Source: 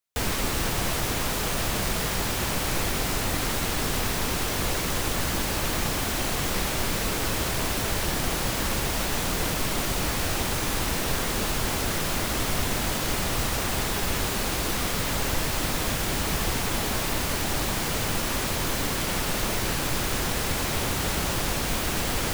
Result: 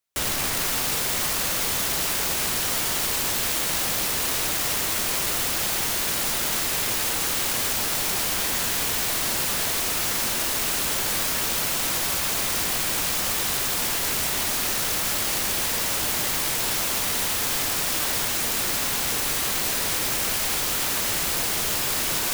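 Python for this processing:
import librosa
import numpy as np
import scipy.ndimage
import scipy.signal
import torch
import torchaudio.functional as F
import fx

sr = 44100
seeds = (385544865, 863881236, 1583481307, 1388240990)

y = fx.echo_diffused(x, sr, ms=482, feedback_pct=53, wet_db=-4.0)
y = (np.mod(10.0 ** (22.5 / 20.0) * y + 1.0, 2.0) - 1.0) / 10.0 ** (22.5 / 20.0)
y = y * librosa.db_to_amplitude(2.5)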